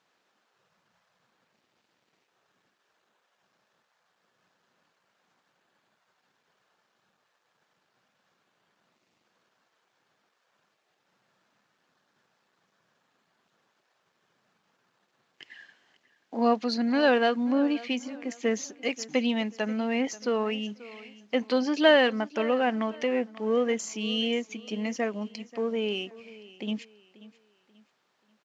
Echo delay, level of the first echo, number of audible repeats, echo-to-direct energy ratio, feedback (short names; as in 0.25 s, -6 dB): 0.535 s, -19.0 dB, 2, -18.5 dB, 34%